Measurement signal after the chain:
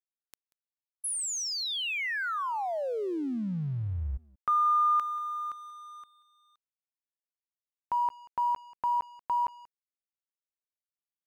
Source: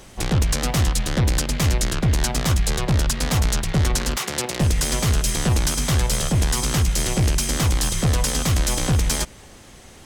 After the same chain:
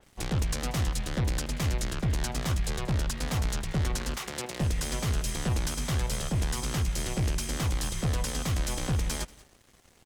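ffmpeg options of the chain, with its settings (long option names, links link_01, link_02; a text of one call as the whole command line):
ffmpeg -i in.wav -af "aecho=1:1:185:0.106,aeval=exprs='sgn(val(0))*max(abs(val(0))-0.00531,0)':channel_layout=same,adynamicequalizer=threshold=0.0158:dfrequency=3800:dqfactor=0.7:tfrequency=3800:tqfactor=0.7:attack=5:release=100:ratio=0.375:range=1.5:mode=cutabove:tftype=highshelf,volume=-8.5dB" out.wav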